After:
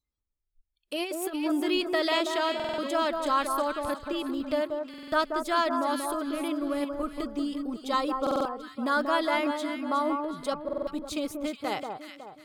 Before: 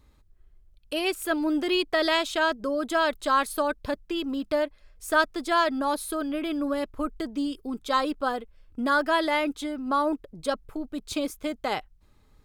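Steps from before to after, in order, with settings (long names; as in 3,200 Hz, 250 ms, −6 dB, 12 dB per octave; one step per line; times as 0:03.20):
delay that swaps between a low-pass and a high-pass 184 ms, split 1,400 Hz, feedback 62%, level −4.5 dB
noise reduction from a noise print of the clip's start 27 dB
0:00.95–0:01.36: compressor whose output falls as the input rises −28 dBFS, ratio −0.5
notch filter 1,600 Hz, Q 14
buffer that repeats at 0:02.55/0:04.89/0:08.22/0:10.64, samples 2,048, times 4
level −3 dB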